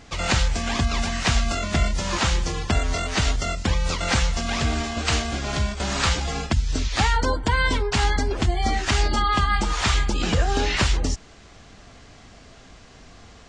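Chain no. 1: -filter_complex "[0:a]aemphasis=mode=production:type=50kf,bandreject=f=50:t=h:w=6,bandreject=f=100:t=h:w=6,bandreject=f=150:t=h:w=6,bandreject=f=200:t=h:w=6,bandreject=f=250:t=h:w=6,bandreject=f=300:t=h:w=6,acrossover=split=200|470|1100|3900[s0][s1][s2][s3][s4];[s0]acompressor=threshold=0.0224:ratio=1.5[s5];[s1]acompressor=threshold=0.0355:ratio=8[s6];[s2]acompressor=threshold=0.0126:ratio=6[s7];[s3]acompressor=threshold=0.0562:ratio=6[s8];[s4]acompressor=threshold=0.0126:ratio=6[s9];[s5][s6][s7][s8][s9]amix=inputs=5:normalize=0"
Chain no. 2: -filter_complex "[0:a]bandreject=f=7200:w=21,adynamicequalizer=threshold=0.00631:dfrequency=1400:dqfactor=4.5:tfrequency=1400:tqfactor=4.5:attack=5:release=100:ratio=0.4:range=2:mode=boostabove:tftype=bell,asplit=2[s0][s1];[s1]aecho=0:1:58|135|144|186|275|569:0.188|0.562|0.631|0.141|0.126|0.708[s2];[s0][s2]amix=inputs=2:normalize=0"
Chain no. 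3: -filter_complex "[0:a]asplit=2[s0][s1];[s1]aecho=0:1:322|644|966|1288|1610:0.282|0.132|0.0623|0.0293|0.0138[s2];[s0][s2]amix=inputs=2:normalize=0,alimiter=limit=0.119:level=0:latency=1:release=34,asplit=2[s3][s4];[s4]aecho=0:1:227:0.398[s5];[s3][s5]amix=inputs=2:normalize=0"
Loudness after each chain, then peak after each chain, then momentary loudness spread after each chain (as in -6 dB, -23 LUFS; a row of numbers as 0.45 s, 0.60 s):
-26.0 LUFS, -19.5 LUFS, -27.0 LUFS; -10.0 dBFS, -4.0 dBFS, -15.5 dBFS; 20 LU, 4 LU, 14 LU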